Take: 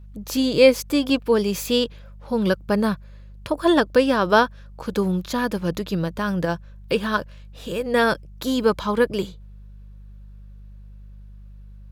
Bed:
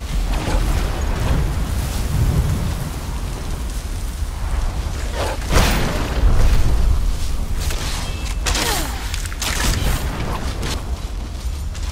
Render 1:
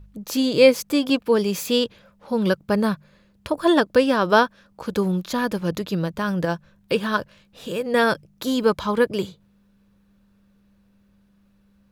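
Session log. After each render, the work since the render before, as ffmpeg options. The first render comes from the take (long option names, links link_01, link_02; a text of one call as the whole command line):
ffmpeg -i in.wav -af "bandreject=frequency=50:width_type=h:width=4,bandreject=frequency=100:width_type=h:width=4,bandreject=frequency=150:width_type=h:width=4" out.wav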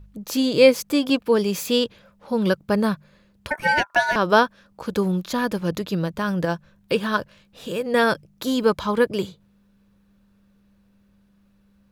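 ffmpeg -i in.wav -filter_complex "[0:a]asettb=1/sr,asplit=3[link_01][link_02][link_03];[link_01]atrim=end=3.504[link_04];[link_02]atrim=start=3.5:end=4.16,asetpts=PTS-STARTPTS,afade=type=in:duration=0.004:curve=qsin,afade=type=out:start_time=0.656:duration=0.004:curve=qsin,aeval=exprs='val(0)*sin(2*PI*1200*n/s)':channel_layout=same[link_05];[link_03]atrim=start=4.156[link_06];[link_04][link_05]acrossfade=duration=0.004:curve1=hsin:curve2=qsin[link_07];[link_07][link_06]acrossfade=duration=0.004:curve1=qsin:curve2=hsin" out.wav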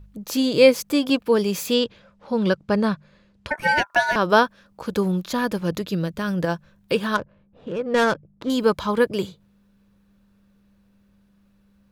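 ffmpeg -i in.wav -filter_complex "[0:a]asettb=1/sr,asplit=3[link_01][link_02][link_03];[link_01]atrim=end=1.744[link_04];[link_02]atrim=start=1.74:end=3.59,asetpts=PTS-STARTPTS,afade=type=in:duration=0.004:curve=qsin,afade=type=out:start_time=1.846:duration=0.004:curve=qsin,lowpass=6800[link_05];[link_03]atrim=start=3.586[link_06];[link_04][link_05]acrossfade=duration=0.004:curve1=hsin:curve2=qsin[link_07];[link_07][link_06]acrossfade=duration=0.004:curve1=qsin:curve2=hsin,asettb=1/sr,asplit=3[link_08][link_09][link_10];[link_08]atrim=end=5.834[link_11];[link_09]atrim=start=5.83:end=6.38,asetpts=PTS-STARTPTS,afade=type=in:duration=0.004:curve=qsin,afade=type=out:start_time=0.546:duration=0.004:curve=qsin,equalizer=frequency=920:width=1.5:gain=-6[link_12];[link_10]atrim=start=6.376[link_13];[link_11][link_12]acrossfade=duration=0.004:curve1=hsin:curve2=qsin[link_14];[link_14][link_13]acrossfade=duration=0.004:curve1=qsin:curve2=hsin,asettb=1/sr,asplit=3[link_15][link_16][link_17];[link_15]atrim=end=7.154[link_18];[link_16]atrim=start=7.15:end=8.5,asetpts=PTS-STARTPTS,afade=type=in:duration=0.004:curve=qsin,afade=type=out:start_time=1.346:duration=0.004:curve=qsin,adynamicsmooth=sensitivity=1.5:basefreq=970[link_19];[link_17]atrim=start=8.496[link_20];[link_18][link_19]acrossfade=duration=0.004:curve1=hsin:curve2=qsin[link_21];[link_21][link_20]acrossfade=duration=0.004:curve1=qsin:curve2=hsin" out.wav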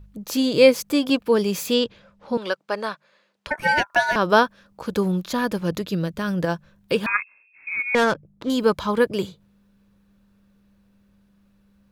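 ffmpeg -i in.wav -filter_complex "[0:a]asettb=1/sr,asplit=3[link_01][link_02][link_03];[link_01]atrim=end=2.374[link_04];[link_02]atrim=start=2.37:end=3.47,asetpts=PTS-STARTPTS,afade=type=in:duration=0.004:curve=qsin,afade=type=out:start_time=1.096:duration=0.004:curve=qsin,highpass=560[link_05];[link_03]atrim=start=3.466[link_06];[link_04][link_05]acrossfade=duration=0.004:curve1=hsin:curve2=qsin[link_07];[link_07][link_06]acrossfade=duration=0.004:curve1=qsin:curve2=hsin,asettb=1/sr,asplit=3[link_08][link_09][link_10];[link_08]atrim=end=7.064[link_11];[link_09]atrim=start=7.06:end=7.95,asetpts=PTS-STARTPTS,afade=type=in:duration=0.004:curve=qsin,afade=type=out:start_time=0.886:duration=0.004:curve=qsin,lowpass=frequency=2300:width_type=q:width=0.5098,lowpass=frequency=2300:width_type=q:width=0.6013,lowpass=frequency=2300:width_type=q:width=0.9,lowpass=frequency=2300:width_type=q:width=2.563,afreqshift=-2700[link_12];[link_10]atrim=start=7.946[link_13];[link_11][link_12]acrossfade=duration=0.004:curve1=hsin:curve2=qsin[link_14];[link_14][link_13]acrossfade=duration=0.004:curve1=qsin:curve2=hsin" out.wav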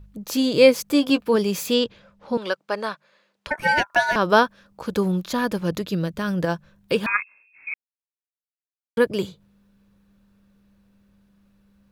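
ffmpeg -i in.wav -filter_complex "[0:a]asettb=1/sr,asplit=3[link_01][link_02][link_03];[link_01]atrim=end=0.914[link_04];[link_02]atrim=start=0.91:end=1.36,asetpts=PTS-STARTPTS,afade=type=in:duration=0.004:curve=qsin,afade=type=out:start_time=0.446:duration=0.004:curve=qsin,asplit=2[link_05][link_06];[link_06]adelay=14,volume=-10.5dB[link_07];[link_05][link_07]amix=inputs=2:normalize=0,atrim=end_sample=19845[link_08];[link_03]atrim=start=1.356[link_09];[link_04][link_08]acrossfade=duration=0.004:curve1=hsin:curve2=qsin[link_10];[link_10][link_09]acrossfade=duration=0.004:curve1=qsin:curve2=hsin,asplit=3[link_11][link_12][link_13];[link_11]atrim=end=7.74,asetpts=PTS-STARTPTS,afade=type=out:start_time=7.736:duration=0.004:curve=hsin[link_14];[link_12]atrim=start=7.74:end=8.97,asetpts=PTS-STARTPTS,volume=0[link_15];[link_13]atrim=start=8.97,asetpts=PTS-STARTPTS,afade=type=in:duration=0.004:curve=hsin[link_16];[link_14][link_15][link_16]concat=n=3:v=0:a=1" out.wav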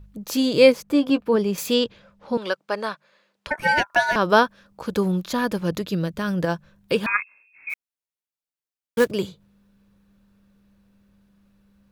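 ffmpeg -i in.wav -filter_complex "[0:a]asettb=1/sr,asplit=3[link_01][link_02][link_03];[link_01]atrim=end=0.724[link_04];[link_02]atrim=start=0.72:end=1.58,asetpts=PTS-STARTPTS,afade=type=in:duration=0.004:curve=qsin,afade=type=out:start_time=0.856:duration=0.004:curve=qsin,highshelf=frequency=2700:gain=-10.5[link_05];[link_03]atrim=start=1.576[link_06];[link_04][link_05]acrossfade=duration=0.004:curve1=hsin:curve2=qsin[link_07];[link_07][link_06]acrossfade=duration=0.004:curve1=qsin:curve2=hsin,asplit=3[link_08][link_09][link_10];[link_08]afade=type=out:start_time=7.69:duration=0.02[link_11];[link_09]acrusher=bits=4:mode=log:mix=0:aa=0.000001,afade=type=in:start_time=7.69:duration=0.02,afade=type=out:start_time=9.1:duration=0.02[link_12];[link_10]afade=type=in:start_time=9.1:duration=0.02[link_13];[link_11][link_12][link_13]amix=inputs=3:normalize=0" out.wav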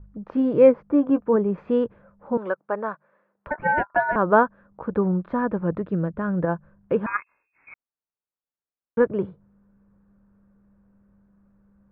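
ffmpeg -i in.wav -af "lowpass=frequency=1500:width=0.5412,lowpass=frequency=1500:width=1.3066" out.wav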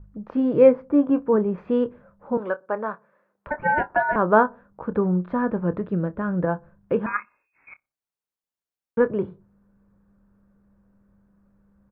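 ffmpeg -i in.wav -filter_complex "[0:a]asplit=2[link_01][link_02];[link_02]adelay=28,volume=-13.5dB[link_03];[link_01][link_03]amix=inputs=2:normalize=0,asplit=2[link_04][link_05];[link_05]adelay=61,lowpass=frequency=900:poles=1,volume=-24dB,asplit=2[link_06][link_07];[link_07]adelay=61,lowpass=frequency=900:poles=1,volume=0.51,asplit=2[link_08][link_09];[link_09]adelay=61,lowpass=frequency=900:poles=1,volume=0.51[link_10];[link_04][link_06][link_08][link_10]amix=inputs=4:normalize=0" out.wav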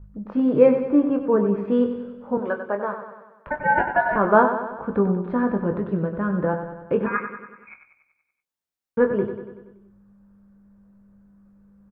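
ffmpeg -i in.wav -filter_complex "[0:a]asplit=2[link_01][link_02];[link_02]adelay=20,volume=-7.5dB[link_03];[link_01][link_03]amix=inputs=2:normalize=0,aecho=1:1:95|190|285|380|475|570|665:0.355|0.206|0.119|0.0692|0.0402|0.0233|0.0135" out.wav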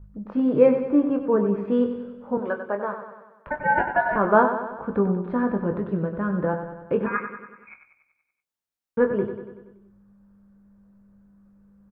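ffmpeg -i in.wav -af "volume=-1.5dB" out.wav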